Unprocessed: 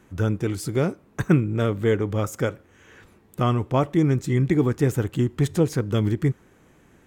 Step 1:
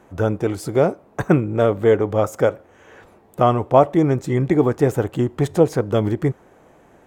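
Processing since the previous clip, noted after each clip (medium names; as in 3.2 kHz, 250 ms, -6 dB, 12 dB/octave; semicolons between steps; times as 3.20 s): peaking EQ 680 Hz +14 dB 1.5 oct; trim -1 dB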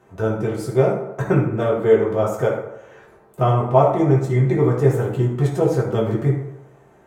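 reverberation RT60 0.90 s, pre-delay 4 ms, DRR -4.5 dB; trim -7 dB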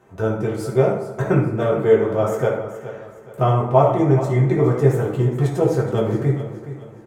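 feedback delay 420 ms, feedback 37%, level -13 dB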